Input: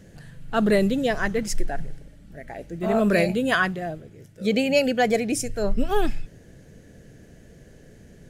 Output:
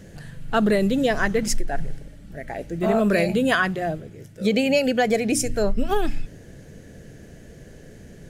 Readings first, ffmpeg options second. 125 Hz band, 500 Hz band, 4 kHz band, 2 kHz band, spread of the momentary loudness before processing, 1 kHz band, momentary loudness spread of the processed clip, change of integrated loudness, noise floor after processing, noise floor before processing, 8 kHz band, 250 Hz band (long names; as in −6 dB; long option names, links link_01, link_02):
+1.5 dB, +1.0 dB, +1.5 dB, +1.0 dB, 16 LU, +1.0 dB, 19 LU, +1.0 dB, −45 dBFS, −50 dBFS, +4.0 dB, +1.5 dB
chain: -af "bandreject=frequency=59.49:width_type=h:width=4,bandreject=frequency=118.98:width_type=h:width=4,bandreject=frequency=178.47:width_type=h:width=4,bandreject=frequency=237.96:width_type=h:width=4,bandreject=frequency=297.45:width_type=h:width=4,acompressor=threshold=-21dB:ratio=6,volume=5dB"